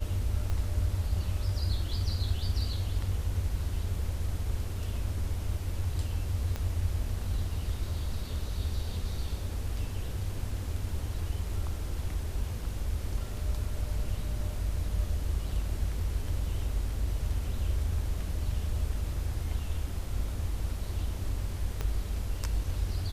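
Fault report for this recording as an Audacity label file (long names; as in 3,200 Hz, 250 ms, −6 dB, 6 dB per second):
0.500000	0.500000	click −22 dBFS
6.560000	6.560000	click −21 dBFS
21.810000	21.810000	click −19 dBFS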